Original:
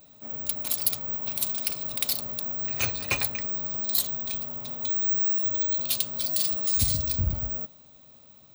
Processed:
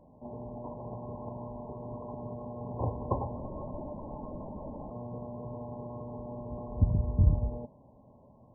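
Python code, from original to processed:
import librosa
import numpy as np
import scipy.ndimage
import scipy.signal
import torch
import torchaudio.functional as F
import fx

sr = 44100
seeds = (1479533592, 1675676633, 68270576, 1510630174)

y = fx.brickwall_lowpass(x, sr, high_hz=1100.0)
y = fx.lpc_vocoder(y, sr, seeds[0], excitation='whisper', order=16, at=(3.38, 4.91))
y = y * librosa.db_to_amplitude(4.0)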